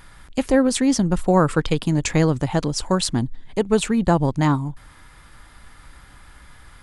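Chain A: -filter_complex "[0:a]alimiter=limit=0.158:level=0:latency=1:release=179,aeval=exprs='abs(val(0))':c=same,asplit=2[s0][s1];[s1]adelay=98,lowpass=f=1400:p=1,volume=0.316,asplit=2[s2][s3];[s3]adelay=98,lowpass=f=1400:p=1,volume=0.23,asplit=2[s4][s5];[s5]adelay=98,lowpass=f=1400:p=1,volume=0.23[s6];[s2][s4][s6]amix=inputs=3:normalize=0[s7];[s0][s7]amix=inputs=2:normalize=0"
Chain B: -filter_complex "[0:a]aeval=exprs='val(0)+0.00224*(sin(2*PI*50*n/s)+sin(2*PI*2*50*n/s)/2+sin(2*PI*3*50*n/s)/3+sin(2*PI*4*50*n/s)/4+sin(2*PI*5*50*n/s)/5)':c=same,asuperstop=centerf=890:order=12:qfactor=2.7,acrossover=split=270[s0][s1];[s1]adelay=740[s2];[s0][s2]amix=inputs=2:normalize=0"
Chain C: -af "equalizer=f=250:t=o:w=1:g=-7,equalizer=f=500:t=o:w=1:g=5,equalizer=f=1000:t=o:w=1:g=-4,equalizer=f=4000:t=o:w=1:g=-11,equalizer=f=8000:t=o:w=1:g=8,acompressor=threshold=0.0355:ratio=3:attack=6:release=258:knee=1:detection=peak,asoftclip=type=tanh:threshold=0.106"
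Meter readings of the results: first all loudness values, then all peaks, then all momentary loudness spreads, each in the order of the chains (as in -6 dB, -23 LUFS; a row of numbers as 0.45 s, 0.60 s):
-31.5 LUFS, -22.5 LUFS, -32.5 LUFS; -13.5 dBFS, -5.0 dBFS, -20.0 dBFS; 20 LU, 8 LU, 18 LU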